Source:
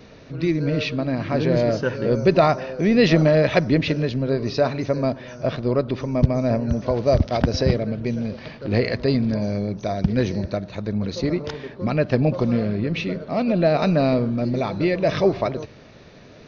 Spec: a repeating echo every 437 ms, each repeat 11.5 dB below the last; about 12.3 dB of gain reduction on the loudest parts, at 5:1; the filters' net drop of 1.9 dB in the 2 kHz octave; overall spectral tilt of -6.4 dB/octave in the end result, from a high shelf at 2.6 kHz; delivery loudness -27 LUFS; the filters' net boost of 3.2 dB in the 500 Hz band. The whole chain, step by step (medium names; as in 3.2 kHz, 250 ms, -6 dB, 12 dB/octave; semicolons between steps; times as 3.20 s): peaking EQ 500 Hz +4 dB; peaking EQ 2 kHz -4 dB; treble shelf 2.6 kHz +3 dB; compression 5:1, threshold -23 dBFS; feedback delay 437 ms, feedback 27%, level -11.5 dB